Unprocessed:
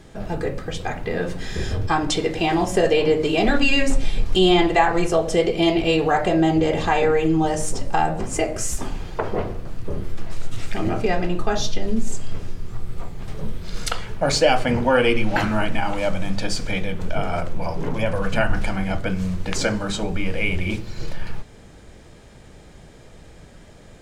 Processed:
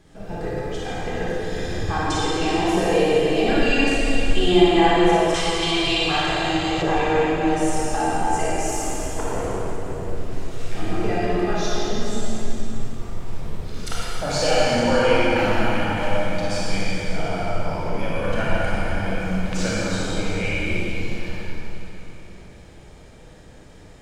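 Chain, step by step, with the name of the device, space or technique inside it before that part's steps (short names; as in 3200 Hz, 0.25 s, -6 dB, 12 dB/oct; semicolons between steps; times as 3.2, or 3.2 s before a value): tunnel (flutter echo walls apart 10.1 m, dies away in 0.42 s; reverb RT60 3.7 s, pre-delay 25 ms, DRR -7 dB); 5.34–6.82 graphic EQ 125/250/500/1000/4000/8000 Hz +3/-6/-10/+4/+10/+4 dB; gain -8.5 dB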